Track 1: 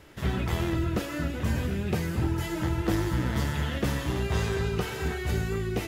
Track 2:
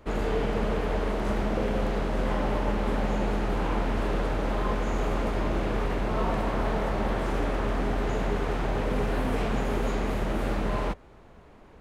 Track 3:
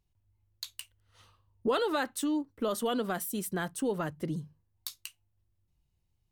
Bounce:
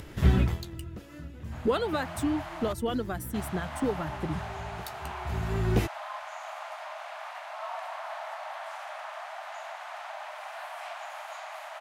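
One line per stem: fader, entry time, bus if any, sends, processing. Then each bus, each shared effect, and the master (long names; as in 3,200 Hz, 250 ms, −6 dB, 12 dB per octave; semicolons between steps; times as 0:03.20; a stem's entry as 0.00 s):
+0.5 dB, 0.00 s, no send, automatic ducking −19 dB, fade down 0.20 s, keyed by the third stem
−13.0 dB, 1.45 s, muted 0:02.73–0:03.34, no send, Butterworth high-pass 620 Hz 96 dB per octave; automatic gain control gain up to 7.5 dB
+1.5 dB, 0.00 s, no send, reverb reduction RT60 0.68 s; expander for the loud parts 1.5 to 1, over −45 dBFS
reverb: not used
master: low-shelf EQ 230 Hz +8.5 dB; upward compression, threshold −39 dBFS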